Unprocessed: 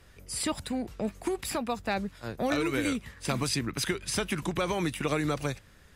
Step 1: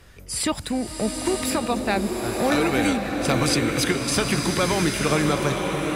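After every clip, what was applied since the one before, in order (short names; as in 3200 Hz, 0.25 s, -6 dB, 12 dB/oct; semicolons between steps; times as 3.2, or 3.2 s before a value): bloom reverb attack 0.99 s, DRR 1.5 dB; gain +6.5 dB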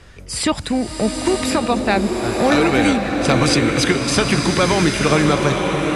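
Bessel low-pass 7600 Hz, order 6; gain +6 dB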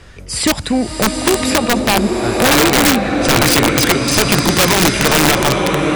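wrapped overs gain 8.5 dB; gain +4 dB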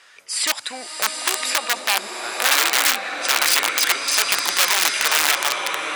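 HPF 1100 Hz 12 dB/oct; gain -3 dB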